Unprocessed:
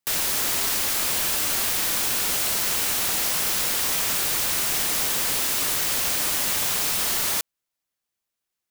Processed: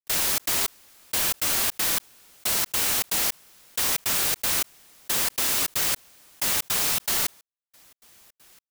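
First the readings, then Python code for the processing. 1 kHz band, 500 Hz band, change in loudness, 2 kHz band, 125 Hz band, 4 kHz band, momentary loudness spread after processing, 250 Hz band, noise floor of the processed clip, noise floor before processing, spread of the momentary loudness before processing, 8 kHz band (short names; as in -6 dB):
-2.5 dB, -2.5 dB, -2.0 dB, -2.5 dB, -2.5 dB, -2.5 dB, 7 LU, -2.5 dB, under -85 dBFS, -84 dBFS, 0 LU, -2.5 dB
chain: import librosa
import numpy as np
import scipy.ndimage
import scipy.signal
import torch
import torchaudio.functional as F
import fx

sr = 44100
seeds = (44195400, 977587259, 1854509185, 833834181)

y = fx.step_gate(x, sr, bpm=159, pattern='.xxx.xx.....xx', floor_db=-60.0, edge_ms=4.5)
y = fx.env_flatten(y, sr, amount_pct=50)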